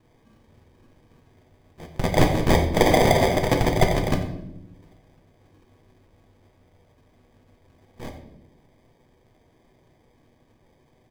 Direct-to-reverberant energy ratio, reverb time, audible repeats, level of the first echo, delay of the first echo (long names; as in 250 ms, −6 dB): 2.5 dB, 0.85 s, 1, −14.0 dB, 89 ms